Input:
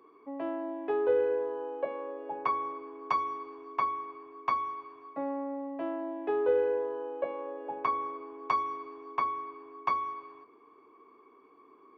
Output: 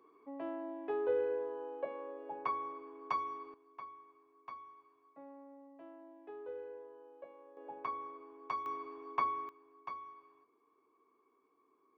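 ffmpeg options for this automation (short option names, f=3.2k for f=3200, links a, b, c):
-af "asetnsamples=n=441:p=0,asendcmd='3.54 volume volume -19dB;7.57 volume volume -10dB;8.66 volume volume -3dB;9.49 volume volume -15dB',volume=-6.5dB"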